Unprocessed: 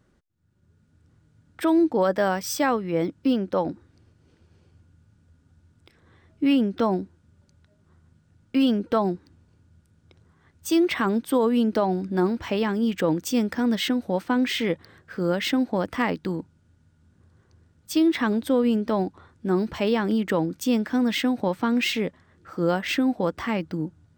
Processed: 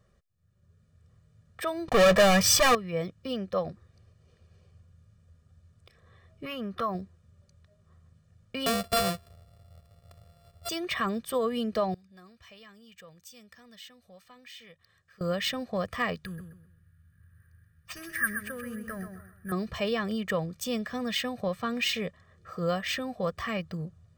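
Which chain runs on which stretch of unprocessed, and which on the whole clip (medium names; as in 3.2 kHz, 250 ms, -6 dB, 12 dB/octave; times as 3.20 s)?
1.88–2.75 s: treble shelf 4.1 kHz -8 dB + waveshaping leveller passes 5
6.45–6.95 s: peaking EQ 1.2 kHz +12 dB 0.71 oct + compression 2:1, threshold -25 dBFS + decimation joined by straight lines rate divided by 3×
8.66–10.69 s: sorted samples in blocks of 64 samples + tone controls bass +4 dB, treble +1 dB + band-stop 6.2 kHz, Q 27
11.94–15.21 s: amplifier tone stack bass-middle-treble 5-5-5 + compression 1.5:1, threshold -59 dBFS
16.25–19.52 s: FFT filter 120 Hz 0 dB, 260 Hz -10 dB, 960 Hz -22 dB, 1.6 kHz +10 dB, 3.4 kHz -27 dB, 8.8 kHz 0 dB + feedback delay 128 ms, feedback 31%, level -8 dB + careless resampling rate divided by 4×, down none, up hold
whole clip: comb 1.7 ms, depth 94%; dynamic bell 480 Hz, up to -5 dB, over -34 dBFS, Q 0.71; trim -4.5 dB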